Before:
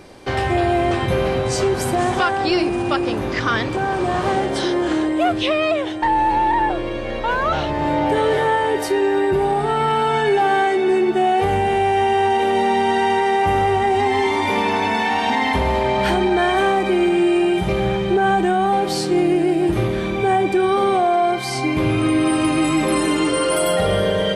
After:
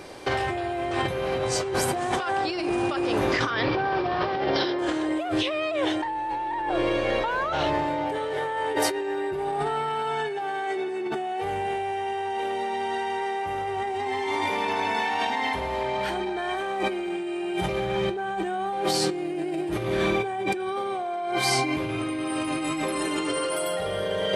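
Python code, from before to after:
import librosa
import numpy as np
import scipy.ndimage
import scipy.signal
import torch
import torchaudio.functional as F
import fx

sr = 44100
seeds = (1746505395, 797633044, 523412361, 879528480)

y = fx.steep_lowpass(x, sr, hz=5500.0, slope=96, at=(3.5, 4.79))
y = fx.peak_eq(y, sr, hz=220.0, db=-6.5, octaves=0.52)
y = fx.over_compress(y, sr, threshold_db=-24.0, ratio=-1.0)
y = fx.low_shelf(y, sr, hz=110.0, db=-10.5)
y = F.gain(torch.from_numpy(y), -2.5).numpy()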